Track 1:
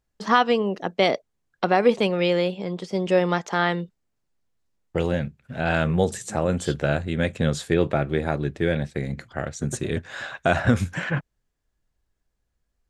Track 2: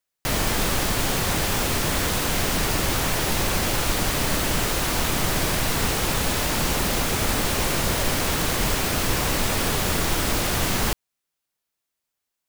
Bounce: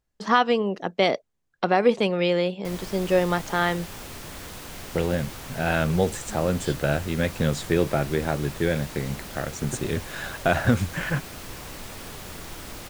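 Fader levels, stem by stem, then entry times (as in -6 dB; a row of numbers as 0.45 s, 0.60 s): -1.0 dB, -15.5 dB; 0.00 s, 2.40 s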